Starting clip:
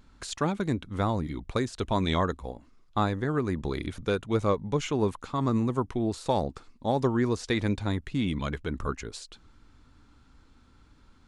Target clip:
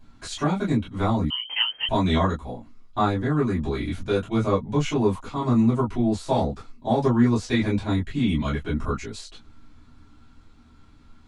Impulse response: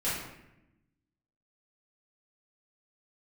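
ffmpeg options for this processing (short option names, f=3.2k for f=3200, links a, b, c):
-filter_complex "[1:a]atrim=start_sample=2205,atrim=end_sample=3087,asetrate=61740,aresample=44100[a];[0:a][a]afir=irnorm=-1:irlink=0,asettb=1/sr,asplit=3[b][c][d];[b]atrim=end=1.304[e];[c]atrim=start=1.3:end=1.89,asetpts=PTS-STARTPTS,afade=t=in:d=0.004:c=qsin,afade=t=out:st=0.586:d=0.004:c=qsin,lowpass=f=2.7k:t=q:w=0.5098,lowpass=f=2.7k:t=q:w=0.6013,lowpass=f=2.7k:t=q:w=0.9,lowpass=f=2.7k:t=q:w=2.563,afreqshift=-3200[f];[d]atrim=start=1.886[g];[e][f]acrossfade=d=0.004:c1=hsin:c2=qsin[h];[h][g]acrossfade=d=0.004:c1=qsin:c2=hsin"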